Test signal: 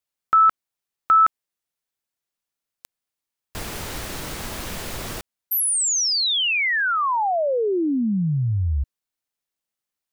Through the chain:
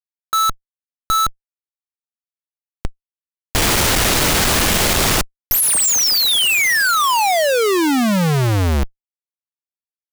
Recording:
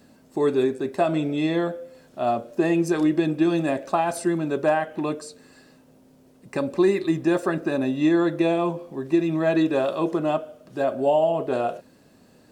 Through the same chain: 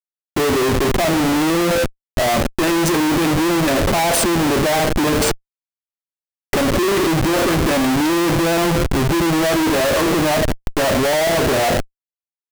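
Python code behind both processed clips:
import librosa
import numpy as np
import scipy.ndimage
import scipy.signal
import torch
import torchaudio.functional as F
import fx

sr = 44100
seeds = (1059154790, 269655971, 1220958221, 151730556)

y = fx.high_shelf(x, sr, hz=4300.0, db=5.5)
y = fx.schmitt(y, sr, flips_db=-36.0)
y = F.gain(torch.from_numpy(y), 7.5).numpy()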